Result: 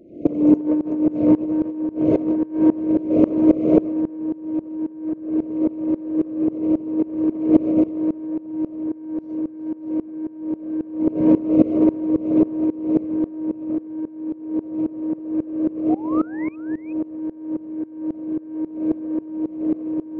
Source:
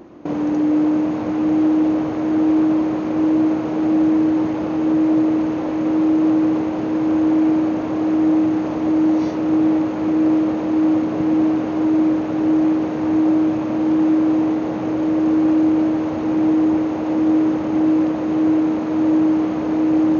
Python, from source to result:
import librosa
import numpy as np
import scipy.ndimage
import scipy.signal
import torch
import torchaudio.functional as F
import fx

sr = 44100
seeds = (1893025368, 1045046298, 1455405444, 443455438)

p1 = fx.envelope_sharpen(x, sr, power=1.5)
p2 = fx.brickwall_bandstop(p1, sr, low_hz=710.0, high_hz=2000.0)
p3 = fx.echo_feedback(p2, sr, ms=587, feedback_pct=44, wet_db=-8.0)
p4 = 10.0 ** (-17.5 / 20.0) * np.tanh(p3 / 10.0 ** (-17.5 / 20.0))
p5 = p3 + (p4 * librosa.db_to_amplitude(-6.0))
p6 = fx.spec_paint(p5, sr, seeds[0], shape='rise', start_s=15.89, length_s=0.67, low_hz=680.0, high_hz=2600.0, level_db=-26.0)
p7 = p6 + 10.0 ** (-5.5 / 20.0) * np.pad(p6, (int(370 * sr / 1000.0), 0))[:len(p6)]
p8 = fx.over_compress(p7, sr, threshold_db=-16.0, ratio=-0.5)
p9 = fx.tremolo_decay(p8, sr, direction='swelling', hz=3.7, depth_db=21)
y = p9 * librosa.db_to_amplitude(3.0)